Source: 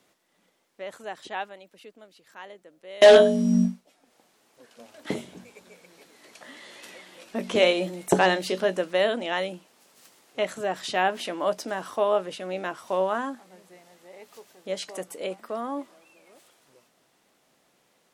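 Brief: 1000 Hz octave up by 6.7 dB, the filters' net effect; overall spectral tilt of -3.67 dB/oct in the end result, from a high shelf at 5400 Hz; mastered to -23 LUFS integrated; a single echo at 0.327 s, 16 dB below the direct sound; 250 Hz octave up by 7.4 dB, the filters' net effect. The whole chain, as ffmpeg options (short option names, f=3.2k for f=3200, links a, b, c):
-af "equalizer=f=250:t=o:g=8.5,equalizer=f=1k:t=o:g=8,highshelf=f=5.4k:g=9,aecho=1:1:327:0.158,volume=-3dB"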